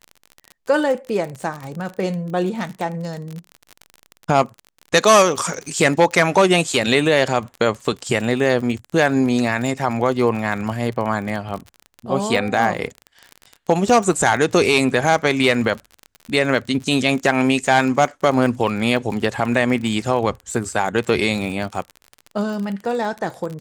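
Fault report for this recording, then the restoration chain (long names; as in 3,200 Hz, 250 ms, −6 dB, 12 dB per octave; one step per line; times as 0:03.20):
surface crackle 35 per second −26 dBFS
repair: click removal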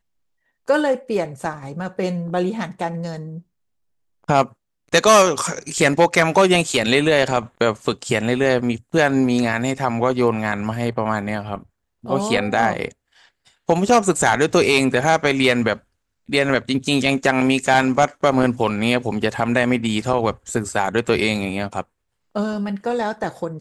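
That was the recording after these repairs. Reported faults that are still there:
none of them is left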